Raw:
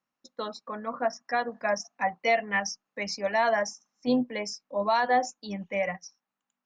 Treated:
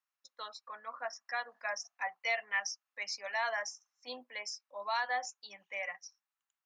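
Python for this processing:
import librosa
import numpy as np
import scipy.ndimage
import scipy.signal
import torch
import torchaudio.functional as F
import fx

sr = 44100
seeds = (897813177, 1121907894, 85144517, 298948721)

y = scipy.signal.sosfilt(scipy.signal.butter(2, 1100.0, 'highpass', fs=sr, output='sos'), x)
y = y * 10.0 ** (-4.5 / 20.0)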